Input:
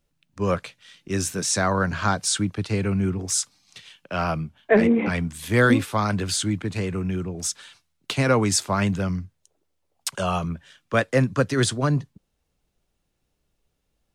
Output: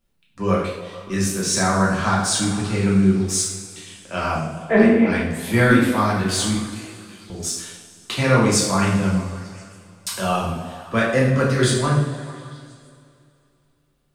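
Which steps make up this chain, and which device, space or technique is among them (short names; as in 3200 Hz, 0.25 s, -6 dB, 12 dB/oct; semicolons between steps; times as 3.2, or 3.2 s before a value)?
6.54–7.3 differentiator; delay with a stepping band-pass 0.147 s, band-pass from 330 Hz, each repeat 0.7 oct, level -10 dB; two-slope reverb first 0.67 s, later 2.8 s, from -16 dB, DRR -5.5 dB; exciter from parts (in parallel at -10 dB: HPF 3600 Hz + soft clip -24 dBFS, distortion -6 dB + HPF 4500 Hz 24 dB/oct); on the sum: gain -3 dB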